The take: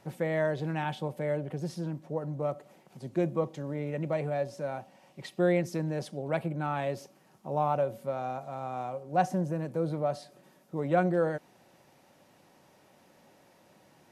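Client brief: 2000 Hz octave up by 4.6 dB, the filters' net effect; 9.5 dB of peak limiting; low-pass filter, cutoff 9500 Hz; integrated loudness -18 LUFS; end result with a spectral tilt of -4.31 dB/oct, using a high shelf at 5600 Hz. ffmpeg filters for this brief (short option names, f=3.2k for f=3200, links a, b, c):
-af "lowpass=9.5k,equalizer=f=2k:t=o:g=5.5,highshelf=f=5.6k:g=4.5,volume=15.5dB,alimiter=limit=-5.5dB:level=0:latency=1"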